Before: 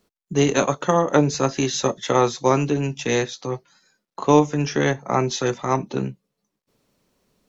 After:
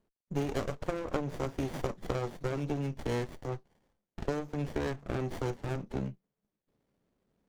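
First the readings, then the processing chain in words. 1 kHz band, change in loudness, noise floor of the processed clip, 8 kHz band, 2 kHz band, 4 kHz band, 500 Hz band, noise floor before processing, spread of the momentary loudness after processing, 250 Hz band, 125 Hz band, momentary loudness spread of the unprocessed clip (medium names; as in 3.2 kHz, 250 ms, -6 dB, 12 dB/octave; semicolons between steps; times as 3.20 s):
-18.0 dB, -14.5 dB, under -85 dBFS, no reading, -15.0 dB, -18.5 dB, -15.0 dB, -81 dBFS, 6 LU, -14.0 dB, -10.5 dB, 10 LU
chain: compression 6:1, threshold -19 dBFS, peak gain reduction 10.5 dB; sliding maximum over 33 samples; trim -8 dB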